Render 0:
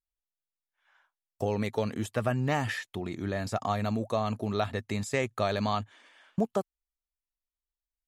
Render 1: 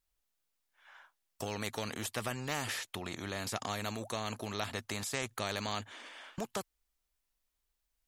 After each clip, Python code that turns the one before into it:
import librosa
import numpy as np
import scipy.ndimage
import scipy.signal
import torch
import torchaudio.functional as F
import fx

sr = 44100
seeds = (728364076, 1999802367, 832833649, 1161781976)

y = fx.spectral_comp(x, sr, ratio=2.0)
y = y * 10.0 ** (-3.5 / 20.0)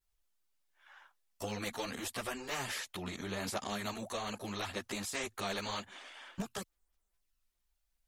y = fx.chorus_voices(x, sr, voices=6, hz=1.2, base_ms=13, depth_ms=3.0, mix_pct=65)
y = y * 10.0 ** (1.5 / 20.0)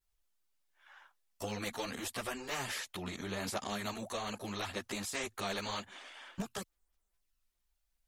y = x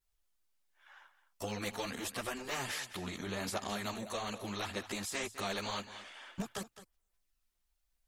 y = x + 10.0 ** (-14.0 / 20.0) * np.pad(x, (int(212 * sr / 1000.0), 0))[:len(x)]